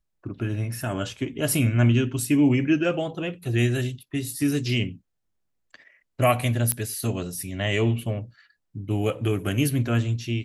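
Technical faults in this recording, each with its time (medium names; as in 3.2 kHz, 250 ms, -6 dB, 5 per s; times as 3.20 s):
6.72 s: pop -8 dBFS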